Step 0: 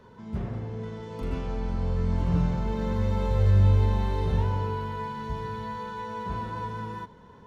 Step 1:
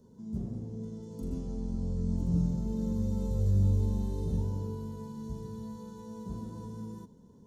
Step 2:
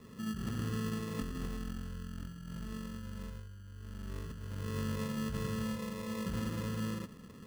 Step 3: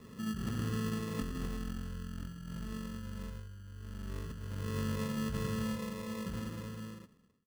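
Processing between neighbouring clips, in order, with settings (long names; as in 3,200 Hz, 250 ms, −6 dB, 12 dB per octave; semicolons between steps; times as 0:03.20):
drawn EQ curve 110 Hz 0 dB, 230 Hz +7 dB, 1,600 Hz −19 dB, 2,300 Hz −21 dB, 6,600 Hz +8 dB; level −6.5 dB
compressor whose output falls as the input rises −39 dBFS, ratio −1; decimation without filtering 29×; level −1 dB
fade-out on the ending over 1.73 s; level +1 dB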